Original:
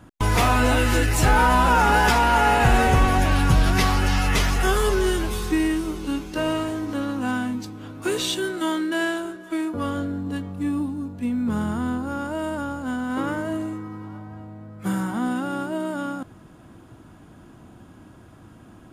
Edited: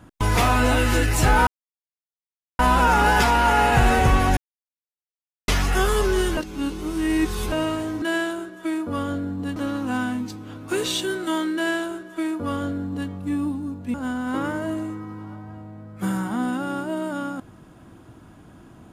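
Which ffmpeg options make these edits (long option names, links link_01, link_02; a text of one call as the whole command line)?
ffmpeg -i in.wav -filter_complex "[0:a]asplit=9[link_01][link_02][link_03][link_04][link_05][link_06][link_07][link_08][link_09];[link_01]atrim=end=1.47,asetpts=PTS-STARTPTS,afade=type=out:start_time=1.466:duration=0.004:curve=hsin,apad=pad_dur=1.12[link_10];[link_02]atrim=start=1.47:end=3.25,asetpts=PTS-STARTPTS,afade=type=in:duration=0.004:curve=hsin,afade=type=out:start_time=1.776:duration=0.004:curve=hsin[link_11];[link_03]atrim=start=3.25:end=4.36,asetpts=PTS-STARTPTS,volume=0[link_12];[link_04]atrim=start=4.36:end=5.252,asetpts=PTS-STARTPTS,afade=type=in:duration=0.004:curve=hsin[link_13];[link_05]atrim=start=5.248:end=6.402,asetpts=PTS-STARTPTS,areverse[link_14];[link_06]atrim=start=6.398:end=6.902[link_15];[link_07]atrim=start=8.888:end=10.432[link_16];[link_08]atrim=start=6.898:end=11.282[link_17];[link_09]atrim=start=12.768[link_18];[link_10][link_11][link_12][link_13]concat=n=4:v=0:a=1[link_19];[link_19][link_14]acrossfade=duration=0.004:curve1=hsin:curve2=hsin[link_20];[link_20][link_15]acrossfade=duration=0.004:curve1=hsin:curve2=hsin[link_21];[link_21][link_16]acrossfade=duration=0.004:curve1=hsin:curve2=hsin[link_22];[link_22][link_17]acrossfade=duration=0.004:curve1=hsin:curve2=hsin[link_23];[link_23][link_18]acrossfade=duration=0.004:curve1=hsin:curve2=hsin" out.wav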